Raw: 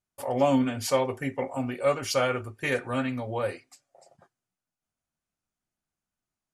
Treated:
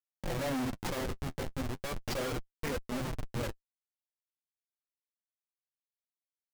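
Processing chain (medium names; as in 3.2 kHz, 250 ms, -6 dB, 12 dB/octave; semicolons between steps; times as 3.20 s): Schmitt trigger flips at -26.5 dBFS; flange 0.36 Hz, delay 3.7 ms, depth 9.5 ms, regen -28%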